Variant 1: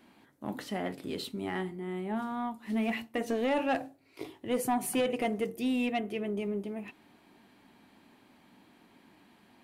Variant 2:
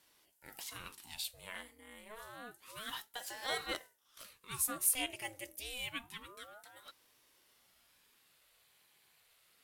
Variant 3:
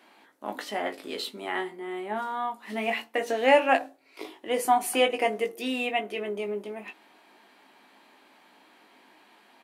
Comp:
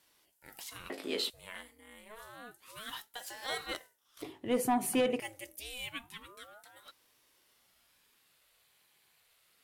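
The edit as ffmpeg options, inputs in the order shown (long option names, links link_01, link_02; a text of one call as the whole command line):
ffmpeg -i take0.wav -i take1.wav -i take2.wav -filter_complex "[1:a]asplit=3[link_01][link_02][link_03];[link_01]atrim=end=0.902[link_04];[2:a]atrim=start=0.898:end=1.302[link_05];[link_02]atrim=start=1.298:end=4.222[link_06];[0:a]atrim=start=4.218:end=5.202[link_07];[link_03]atrim=start=5.198[link_08];[link_04][link_05]acrossfade=duration=0.004:curve1=hsin:curve2=hsin[link_09];[link_09][link_06]acrossfade=duration=0.004:curve1=hsin:curve2=hsin[link_10];[link_10][link_07]acrossfade=duration=0.004:curve1=hsin:curve2=hsin[link_11];[link_11][link_08]acrossfade=duration=0.004:curve1=hsin:curve2=hsin" out.wav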